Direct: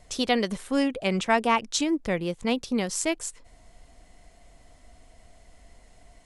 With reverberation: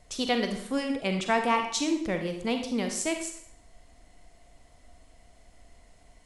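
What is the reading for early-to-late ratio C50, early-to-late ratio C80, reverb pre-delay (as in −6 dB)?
6.5 dB, 9.5 dB, 29 ms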